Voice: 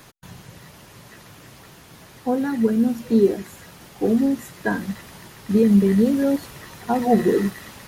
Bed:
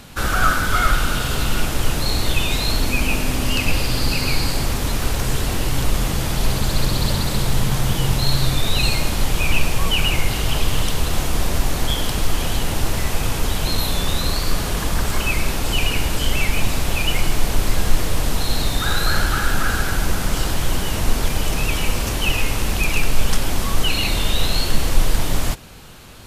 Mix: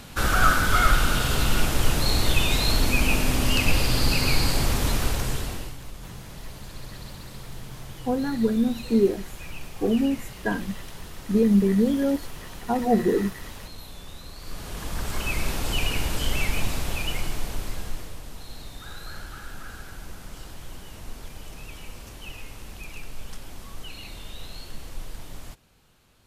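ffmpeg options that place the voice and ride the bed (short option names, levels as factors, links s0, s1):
-filter_complex "[0:a]adelay=5800,volume=0.668[s0];[1:a]volume=4.47,afade=t=out:st=4.89:d=0.89:silence=0.112202,afade=t=in:st=14.36:d=1.12:silence=0.177828,afade=t=out:st=16.48:d=1.73:silence=0.199526[s1];[s0][s1]amix=inputs=2:normalize=0"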